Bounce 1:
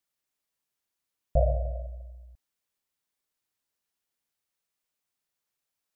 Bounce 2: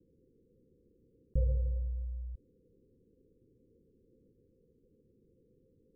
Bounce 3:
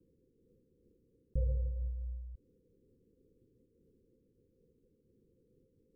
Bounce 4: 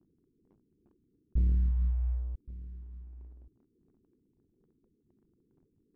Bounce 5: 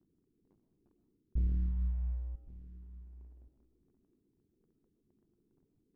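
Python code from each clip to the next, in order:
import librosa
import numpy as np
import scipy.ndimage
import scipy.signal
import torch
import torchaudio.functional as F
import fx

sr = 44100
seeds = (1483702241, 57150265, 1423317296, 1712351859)

y1 = scipy.signal.sosfilt(scipy.signal.cheby1(10, 1.0, 520.0, 'lowpass', fs=sr, output='sos'), x)
y1 = fx.env_flatten(y1, sr, amount_pct=50)
y1 = F.gain(torch.from_numpy(y1), -5.5).numpy()
y2 = fx.am_noise(y1, sr, seeds[0], hz=5.7, depth_pct=55)
y3 = fx.envelope_sharpen(y2, sr, power=3.0)
y3 = fx.leveller(y3, sr, passes=2)
y3 = y3 + 10.0 ** (-17.5 / 20.0) * np.pad(y3, (int(1123 * sr / 1000.0), 0))[:len(y3)]
y3 = F.gain(torch.from_numpy(y3), 3.0).numpy()
y4 = fx.rev_freeverb(y3, sr, rt60_s=0.67, hf_ratio=0.35, predelay_ms=80, drr_db=8.0)
y4 = F.gain(torch.from_numpy(y4), -4.5).numpy()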